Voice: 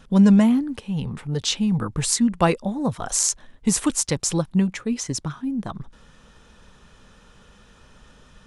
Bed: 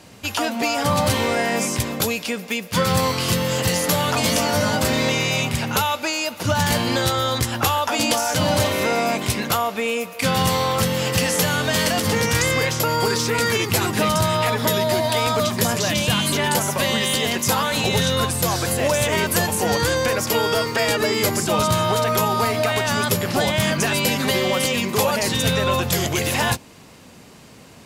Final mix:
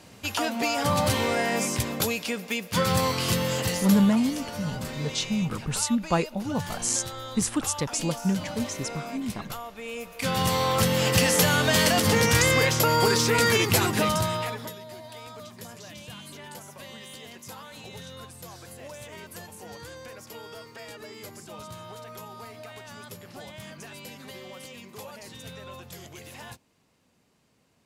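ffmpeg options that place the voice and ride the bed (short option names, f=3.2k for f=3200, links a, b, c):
-filter_complex "[0:a]adelay=3700,volume=-5.5dB[a];[1:a]volume=11dB,afade=t=out:st=3.45:d=0.74:silence=0.251189,afade=t=in:st=9.78:d=1.28:silence=0.16788,afade=t=out:st=13.67:d=1.08:silence=0.0841395[b];[a][b]amix=inputs=2:normalize=0"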